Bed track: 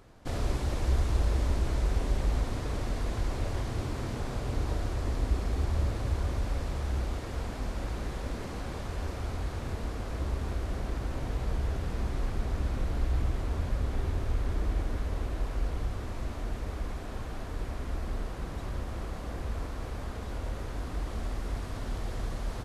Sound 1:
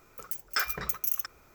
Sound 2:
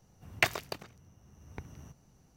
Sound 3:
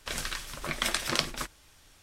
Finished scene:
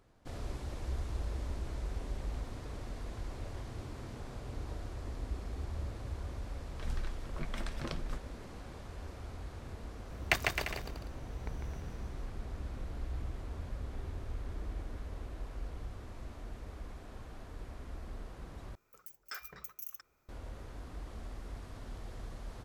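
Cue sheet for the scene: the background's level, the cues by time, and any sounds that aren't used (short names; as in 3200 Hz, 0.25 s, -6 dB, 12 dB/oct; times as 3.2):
bed track -10.5 dB
1.92 add 2 -14 dB + compressor 3:1, threshold -58 dBFS
6.72 add 3 -12.5 dB + tilt -3.5 dB/oct
9.89 add 2 -3 dB + bouncing-ball echo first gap 0.15 s, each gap 0.75×, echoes 5
18.75 replace with 1 -15.5 dB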